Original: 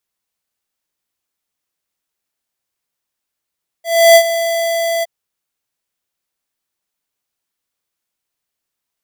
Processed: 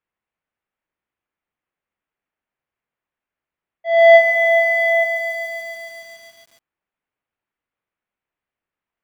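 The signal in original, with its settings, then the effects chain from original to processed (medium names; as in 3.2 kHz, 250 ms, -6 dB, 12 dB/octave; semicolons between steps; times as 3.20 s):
ADSR square 669 Hz, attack 315 ms, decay 72 ms, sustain -12.5 dB, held 1.19 s, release 25 ms -4.5 dBFS
low-pass 2.5 kHz 24 dB/octave; bit-crushed delay 141 ms, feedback 80%, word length 7-bit, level -8 dB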